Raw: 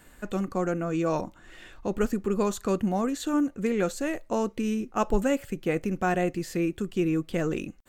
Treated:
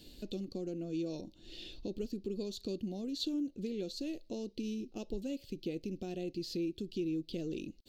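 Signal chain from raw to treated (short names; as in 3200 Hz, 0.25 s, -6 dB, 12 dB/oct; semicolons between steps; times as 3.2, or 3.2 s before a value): compressor 2.5:1, threshold -42 dBFS, peak gain reduction 16 dB; EQ curve 180 Hz 0 dB, 340 Hz +5 dB, 630 Hz -6 dB, 1200 Hz -24 dB, 1900 Hz -17 dB, 2700 Hz +1 dB, 4400 Hz +15 dB, 7800 Hz -8 dB, 14000 Hz -2 dB; gain -1 dB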